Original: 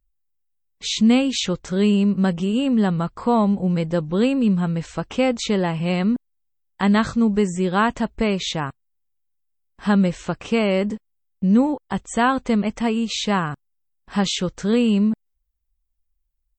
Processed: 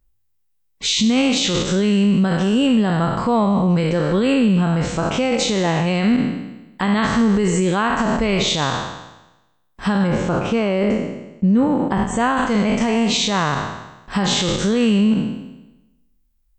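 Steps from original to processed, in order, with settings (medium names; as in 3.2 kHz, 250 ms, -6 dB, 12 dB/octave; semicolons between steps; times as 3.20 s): spectral sustain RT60 1.01 s; 10.07–12.37 s: treble shelf 2.7 kHz -9 dB; peak limiter -16 dBFS, peak gain reduction 11 dB; trim +6.5 dB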